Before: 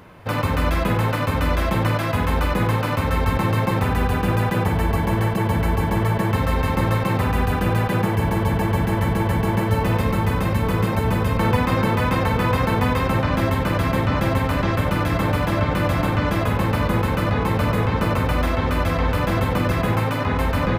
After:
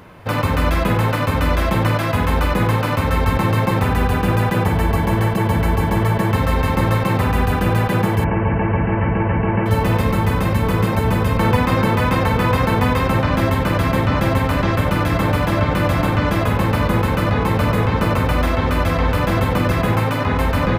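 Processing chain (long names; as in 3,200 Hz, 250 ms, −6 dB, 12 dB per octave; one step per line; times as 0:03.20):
0:08.24–0:09.66: Chebyshev low-pass filter 2,900 Hz, order 8
level +3 dB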